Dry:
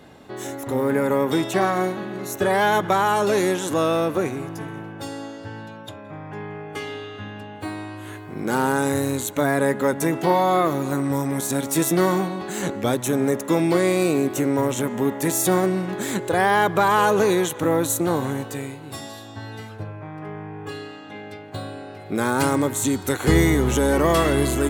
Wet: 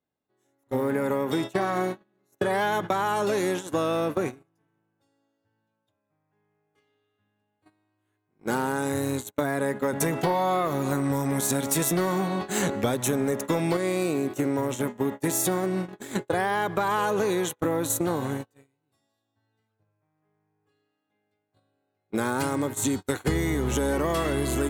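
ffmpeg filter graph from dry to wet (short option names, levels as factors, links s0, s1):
-filter_complex "[0:a]asettb=1/sr,asplit=3[s0][s1][s2];[s0]atrim=end=9.934[s3];[s1]atrim=start=9.93:end=13.77,asetpts=PTS-STARTPTS,afade=t=in:d=0.004:c=qsin,afade=t=out:st=3.836:d=0.004:c=qsin,acontrast=37,equalizer=f=320:w=7:g=-7.5[s4];[s2]atrim=start=13.766[s5];[s3][s4]acrossfade=d=0.004:c1=hsin:c2=qsin[s6];[s6][s5]acrossfade=d=0.004:c1=qsin:c2=hsin,agate=range=0.01:threshold=0.0631:ratio=16:detection=peak,acompressor=threshold=0.0794:ratio=6"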